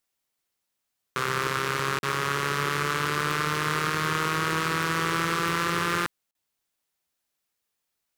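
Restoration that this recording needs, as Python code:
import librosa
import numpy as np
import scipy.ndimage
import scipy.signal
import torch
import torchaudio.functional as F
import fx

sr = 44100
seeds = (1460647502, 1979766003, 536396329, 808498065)

y = fx.fix_declip(x, sr, threshold_db=-13.0)
y = fx.fix_interpolate(y, sr, at_s=(1.99, 6.31), length_ms=41.0)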